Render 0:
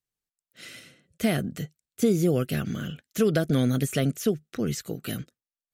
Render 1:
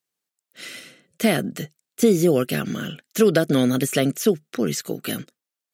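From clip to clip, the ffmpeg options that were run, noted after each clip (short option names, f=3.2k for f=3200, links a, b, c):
-af "highpass=210,volume=7dB"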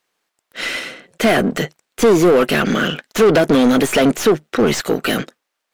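-filter_complex "[0:a]aeval=exprs='if(lt(val(0),0),0.447*val(0),val(0))':c=same,asplit=2[a][b];[b]highpass=f=720:p=1,volume=29dB,asoftclip=type=tanh:threshold=-4.5dB[c];[a][c]amix=inputs=2:normalize=0,lowpass=f=1.5k:p=1,volume=-6dB,volume=1.5dB"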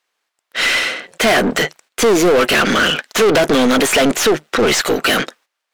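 -filter_complex "[0:a]aeval=exprs='if(lt(val(0),0),0.708*val(0),val(0))':c=same,asplit=2[a][b];[b]highpass=f=720:p=1,volume=23dB,asoftclip=type=tanh:threshold=-3dB[c];[a][c]amix=inputs=2:normalize=0,lowpass=f=6.8k:p=1,volume=-6dB,agate=range=-12dB:threshold=-42dB:ratio=16:detection=peak,volume=-3dB"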